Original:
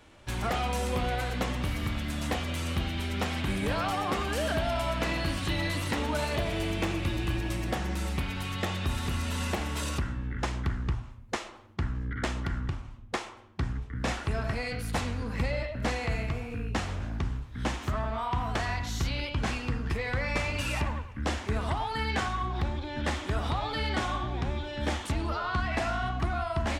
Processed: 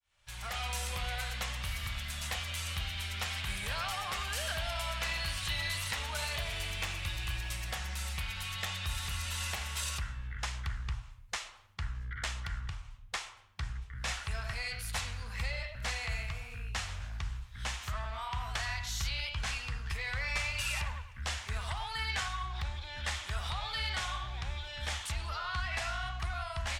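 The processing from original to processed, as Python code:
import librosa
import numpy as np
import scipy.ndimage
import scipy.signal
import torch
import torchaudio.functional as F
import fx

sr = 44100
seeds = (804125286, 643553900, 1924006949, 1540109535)

y = fx.fade_in_head(x, sr, length_s=0.69)
y = fx.tone_stack(y, sr, knobs='10-0-10')
y = F.gain(torch.from_numpy(y), 2.5).numpy()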